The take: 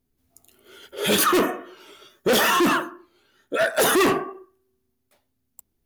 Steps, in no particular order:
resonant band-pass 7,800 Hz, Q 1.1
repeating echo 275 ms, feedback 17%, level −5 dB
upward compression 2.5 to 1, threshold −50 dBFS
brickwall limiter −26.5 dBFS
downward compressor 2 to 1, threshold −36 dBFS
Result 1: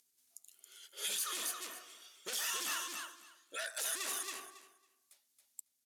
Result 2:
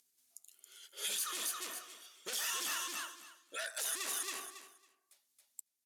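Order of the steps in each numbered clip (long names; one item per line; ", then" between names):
upward compression, then resonant band-pass, then downward compressor, then repeating echo, then brickwall limiter
repeating echo, then upward compression, then resonant band-pass, then downward compressor, then brickwall limiter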